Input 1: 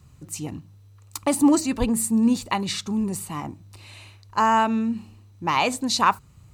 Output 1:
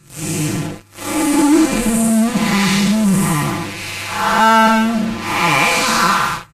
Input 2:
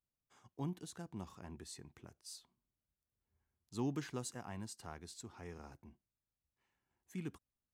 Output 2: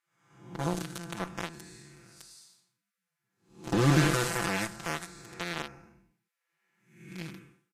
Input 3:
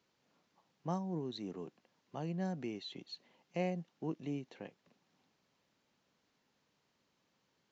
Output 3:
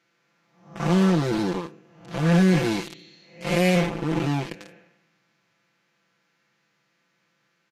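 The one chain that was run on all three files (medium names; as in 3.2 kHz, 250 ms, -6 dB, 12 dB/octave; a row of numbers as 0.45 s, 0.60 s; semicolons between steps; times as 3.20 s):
spectral blur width 324 ms; high-order bell 1.8 kHz +8 dB 1.2 oct; in parallel at -11.5 dB: fuzz box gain 47 dB, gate -44 dBFS; on the sum: comb 5.9 ms, depth 95%; trim +4.5 dB; Vorbis 32 kbps 48 kHz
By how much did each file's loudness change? +8.5 LU, +15.5 LU, +19.0 LU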